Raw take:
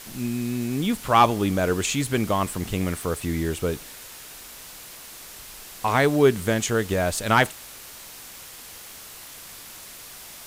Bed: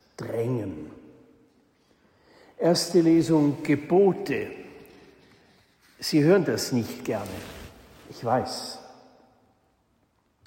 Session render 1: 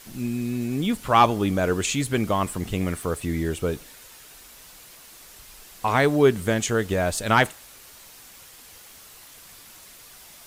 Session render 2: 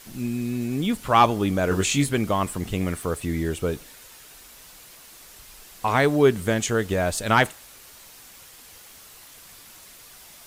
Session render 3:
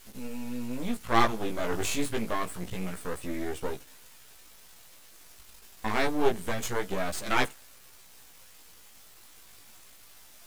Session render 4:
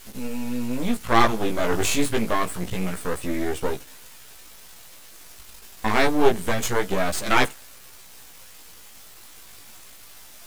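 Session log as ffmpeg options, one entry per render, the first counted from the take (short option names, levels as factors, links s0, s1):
-af "afftdn=nr=6:nf=-42"
-filter_complex "[0:a]asettb=1/sr,asplit=3[s0][s1][s2];[s0]atrim=end=1.694[s3];[s1]atrim=start=1.69:end=2.11,asetpts=PTS-STARTPTS,afade=t=in:d=0.004:c=qsin,afade=t=out:st=0.416:d=0.004:c=qsin,asplit=2[s4][s5];[s5]adelay=21,volume=0.75[s6];[s4][s6]amix=inputs=2:normalize=0,atrim=end_sample=18522[s7];[s2]atrim=start=2.106[s8];[s3][s7]acrossfade=d=0.004:c1=hsin:c2=qsin[s9];[s9][s8]acrossfade=d=0.004:c1=qsin:c2=hsin"
-af "aeval=exprs='max(val(0),0)':c=same,flanger=delay=15:depth=3.4:speed=0.27"
-af "volume=2.37,alimiter=limit=0.708:level=0:latency=1"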